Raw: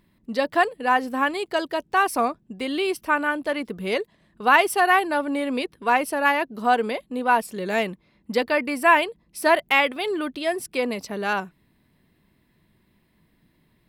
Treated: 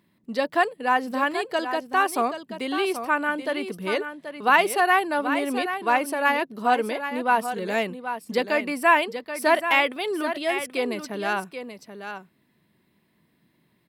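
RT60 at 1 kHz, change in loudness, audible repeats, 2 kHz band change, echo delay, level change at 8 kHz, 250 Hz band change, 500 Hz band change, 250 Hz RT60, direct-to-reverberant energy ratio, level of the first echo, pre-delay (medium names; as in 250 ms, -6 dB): no reverb, -1.0 dB, 1, -1.0 dB, 781 ms, -1.0 dB, -1.5 dB, -1.0 dB, no reverb, no reverb, -9.5 dB, no reverb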